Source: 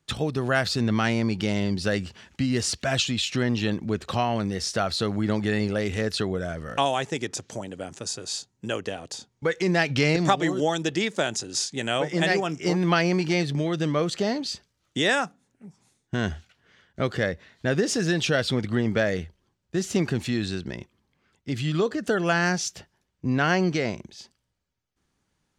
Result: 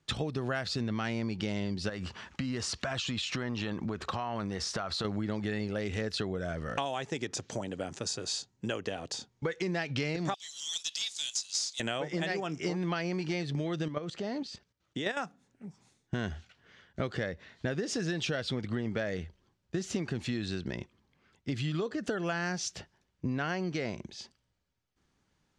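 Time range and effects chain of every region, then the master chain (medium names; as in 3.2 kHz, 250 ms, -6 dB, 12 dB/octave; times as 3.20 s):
1.89–5.05 s: peaking EQ 1.1 kHz +8.5 dB 0.98 oct + compression, threshold -28 dBFS
10.34–11.80 s: inverse Chebyshev high-pass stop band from 650 Hz, stop band 80 dB + power-law waveshaper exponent 0.7
13.88–15.17 s: high-pass 42 Hz 6 dB/octave + treble shelf 2.9 kHz -5 dB + level held to a coarse grid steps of 11 dB
whole clip: low-pass 7.2 kHz 12 dB/octave; compression 6:1, threshold -30 dBFS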